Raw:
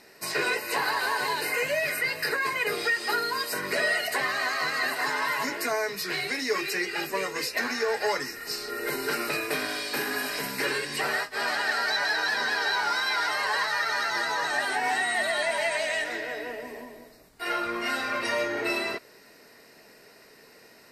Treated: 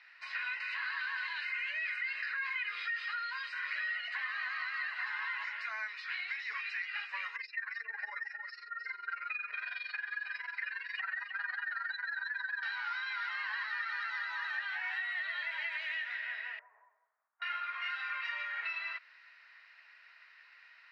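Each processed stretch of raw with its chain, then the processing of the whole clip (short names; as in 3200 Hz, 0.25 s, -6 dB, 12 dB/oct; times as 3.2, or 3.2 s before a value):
0.6–3.92 bell 810 Hz -13 dB 0.44 oct + fast leveller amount 70%
7.36–12.63 spectral contrast raised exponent 2 + AM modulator 22 Hz, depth 70% + echo 0.309 s -9.5 dB
16.59–17.42 LPF 1100 Hz 24 dB/oct + low shelf 330 Hz -9 dB + upward expander, over -53 dBFS
whole clip: HPF 1300 Hz 24 dB/oct; compressor 4:1, threshold -35 dBFS; LPF 3200 Hz 24 dB/oct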